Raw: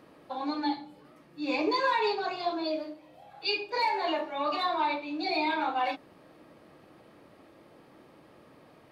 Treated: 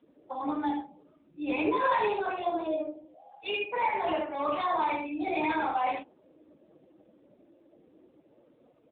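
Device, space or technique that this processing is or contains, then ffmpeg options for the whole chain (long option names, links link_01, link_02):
mobile call with aggressive noise cancelling: -filter_complex "[0:a]asettb=1/sr,asplit=3[link_01][link_02][link_03];[link_01]atrim=end=3.584[link_04];[link_02]atrim=start=3.58:end=4.08,asetpts=PTS-STARTPTS,afade=type=in:duration=0.004:curve=qsin,afade=type=out:start_time=0.496:duration=0.004:curve=qsin,highpass=frequency=230:width=0.5412,highpass=frequency=230:width=1.3066[link_05];[link_03]atrim=start=4.076[link_06];[link_04][link_05]acrossfade=duration=0.004:curve1=hsin:curve2=qsin[link_07];[link_07][link_06]acrossfade=duration=0.004:curve1=qsin:curve2=hsin,highpass=frequency=110:poles=1,aecho=1:1:75:0.631,afftdn=noise_reduction=17:noise_floor=-46" -ar 8000 -c:a libopencore_amrnb -b:a 7950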